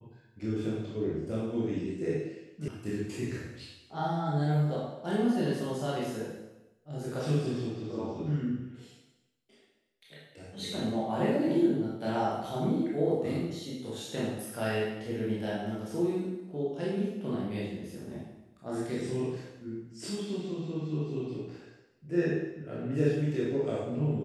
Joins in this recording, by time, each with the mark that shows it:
0:02.68: cut off before it has died away

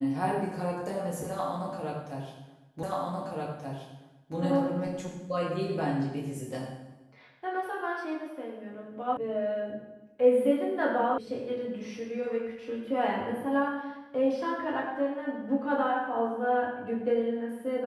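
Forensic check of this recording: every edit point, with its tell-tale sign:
0:02.83: the same again, the last 1.53 s
0:09.17: cut off before it has died away
0:11.18: cut off before it has died away

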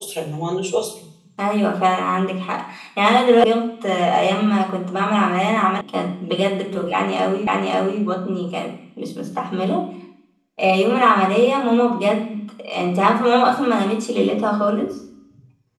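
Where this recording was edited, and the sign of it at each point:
0:03.44: cut off before it has died away
0:05.81: cut off before it has died away
0:07.47: the same again, the last 0.54 s

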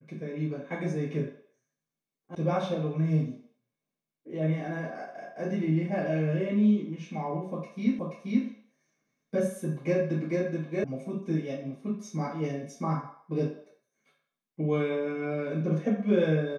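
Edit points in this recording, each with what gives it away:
0:02.35: cut off before it has died away
0:07.99: the same again, the last 0.48 s
0:10.84: cut off before it has died away

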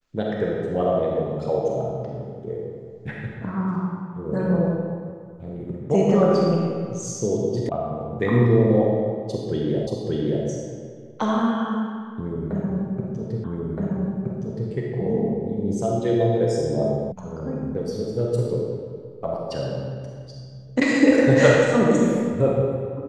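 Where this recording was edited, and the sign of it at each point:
0:07.69: cut off before it has died away
0:09.87: the same again, the last 0.58 s
0:13.44: the same again, the last 1.27 s
0:17.12: cut off before it has died away

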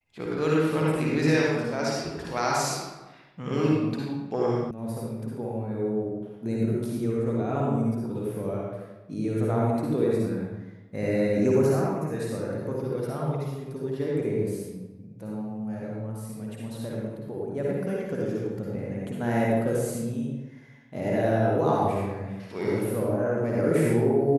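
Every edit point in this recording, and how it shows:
0:04.71: cut off before it has died away

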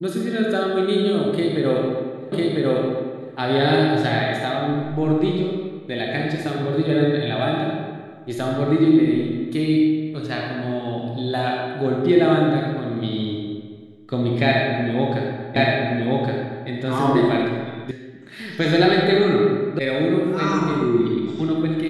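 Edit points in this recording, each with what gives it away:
0:02.32: the same again, the last 1 s
0:15.56: the same again, the last 1.12 s
0:17.91: cut off before it has died away
0:19.79: cut off before it has died away

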